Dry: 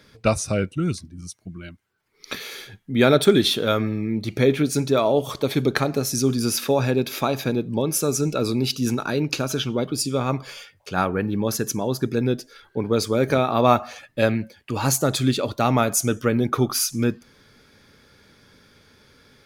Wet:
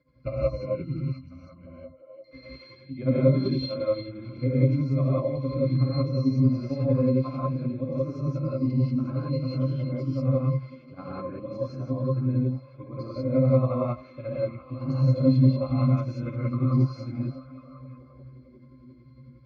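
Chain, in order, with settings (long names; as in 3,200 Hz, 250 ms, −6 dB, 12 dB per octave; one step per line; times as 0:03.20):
low-pass filter 5,300 Hz 24 dB per octave
resonances in every octave C, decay 0.23 s
amplitude tremolo 11 Hz, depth 90%
echo through a band-pass that steps 349 ms, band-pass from 3,100 Hz, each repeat −0.7 octaves, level −8 dB
reverb whose tail is shaped and stops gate 210 ms rising, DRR −7.5 dB
level +3 dB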